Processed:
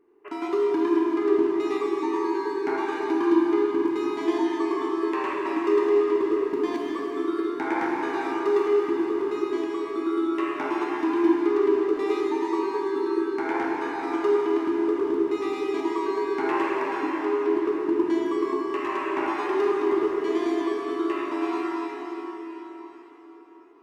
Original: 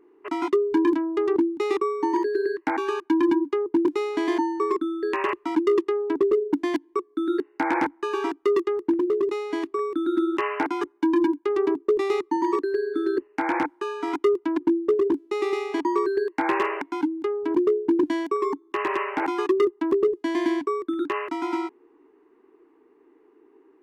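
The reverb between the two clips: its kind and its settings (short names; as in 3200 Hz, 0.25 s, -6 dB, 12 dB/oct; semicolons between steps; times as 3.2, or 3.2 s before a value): plate-style reverb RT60 4.9 s, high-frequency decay 0.85×, DRR -5 dB; gain -7 dB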